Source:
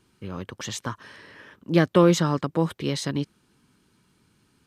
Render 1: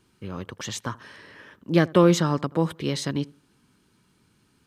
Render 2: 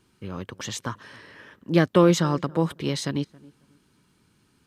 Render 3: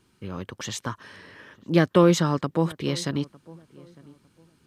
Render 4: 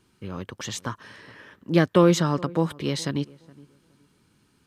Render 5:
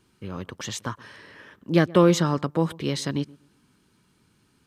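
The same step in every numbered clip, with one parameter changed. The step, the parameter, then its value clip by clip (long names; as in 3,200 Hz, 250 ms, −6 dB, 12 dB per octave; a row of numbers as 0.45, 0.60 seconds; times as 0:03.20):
feedback echo with a low-pass in the loop, delay time: 81, 273, 904, 418, 124 milliseconds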